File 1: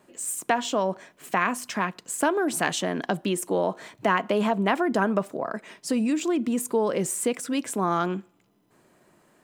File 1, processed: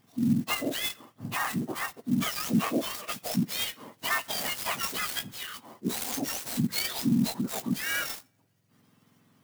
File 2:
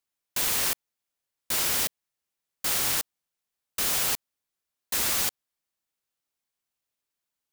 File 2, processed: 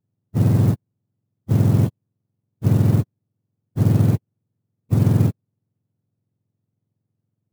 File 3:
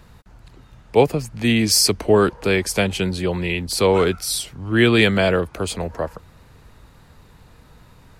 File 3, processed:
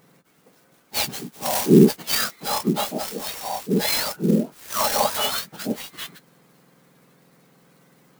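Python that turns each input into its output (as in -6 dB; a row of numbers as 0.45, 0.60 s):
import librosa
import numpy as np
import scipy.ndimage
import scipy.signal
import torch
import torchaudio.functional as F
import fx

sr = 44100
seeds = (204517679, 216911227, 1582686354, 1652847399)

y = fx.octave_mirror(x, sr, pivot_hz=1400.0)
y = fx.clock_jitter(y, sr, seeds[0], jitter_ms=0.035)
y = y * librosa.db_to_amplitude(-2.5)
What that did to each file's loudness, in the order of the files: -3.5, +6.0, -3.0 LU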